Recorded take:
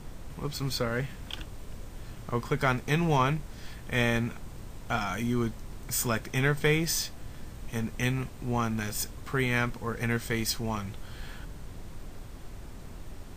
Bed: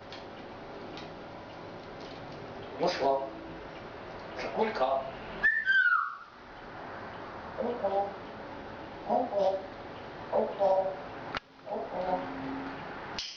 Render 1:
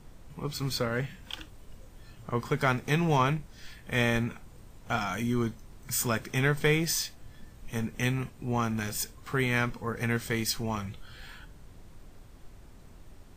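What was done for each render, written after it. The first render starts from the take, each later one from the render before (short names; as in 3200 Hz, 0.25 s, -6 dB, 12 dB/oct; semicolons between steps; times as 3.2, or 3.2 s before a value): noise print and reduce 8 dB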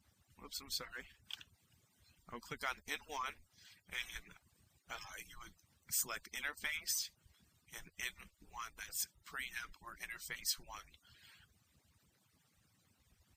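median-filter separation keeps percussive; passive tone stack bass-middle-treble 5-5-5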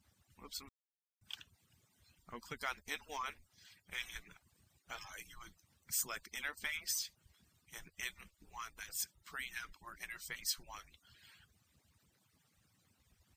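0.69–1.21 mute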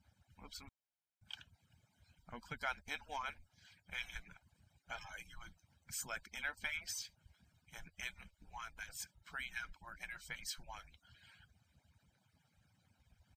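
LPF 2800 Hz 6 dB/oct; comb 1.3 ms, depth 58%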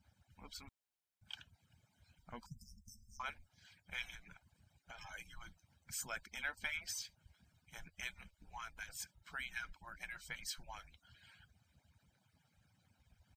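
2.46–3.2 brick-wall FIR band-stop 230–4800 Hz; 4.14–4.99 compressor, threshold -49 dBFS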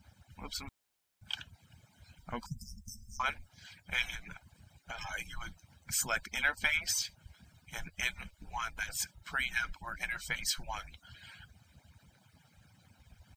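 gain +11 dB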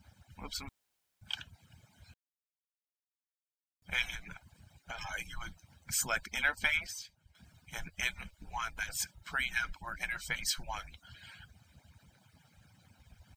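2.14–3.82 mute; 6.87–7.35 gain -11 dB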